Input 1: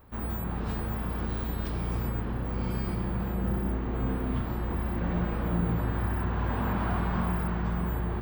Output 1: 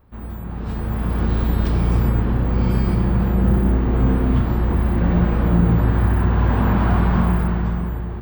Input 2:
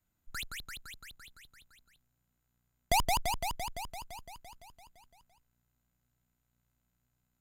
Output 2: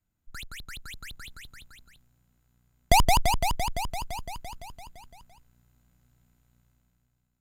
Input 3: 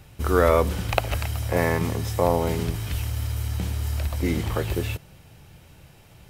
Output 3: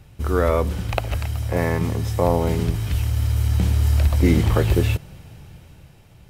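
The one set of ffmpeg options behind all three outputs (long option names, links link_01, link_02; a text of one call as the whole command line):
ffmpeg -i in.wav -af "lowshelf=frequency=320:gain=5.5,dynaudnorm=framelen=210:gausssize=9:maxgain=13.5dB,highshelf=frequency=12000:gain=-4,volume=-3dB" out.wav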